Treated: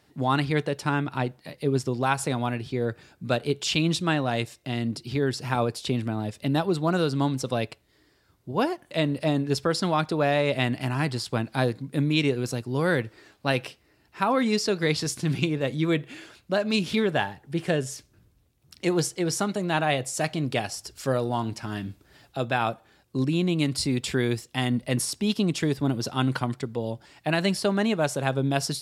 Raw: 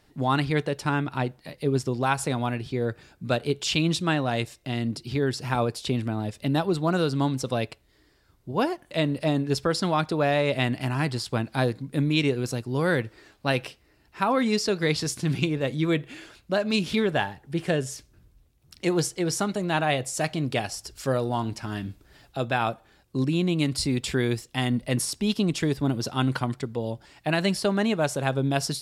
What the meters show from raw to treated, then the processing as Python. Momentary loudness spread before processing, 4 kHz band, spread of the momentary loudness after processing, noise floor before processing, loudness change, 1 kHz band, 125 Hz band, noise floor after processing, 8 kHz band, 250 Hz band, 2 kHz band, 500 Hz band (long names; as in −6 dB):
8 LU, 0.0 dB, 8 LU, −62 dBFS, 0.0 dB, 0.0 dB, −0.5 dB, −64 dBFS, 0.0 dB, 0.0 dB, 0.0 dB, 0.0 dB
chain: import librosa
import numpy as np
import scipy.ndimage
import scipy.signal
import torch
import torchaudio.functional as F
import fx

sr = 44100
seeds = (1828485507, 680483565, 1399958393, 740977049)

y = scipy.signal.sosfilt(scipy.signal.butter(2, 75.0, 'highpass', fs=sr, output='sos'), x)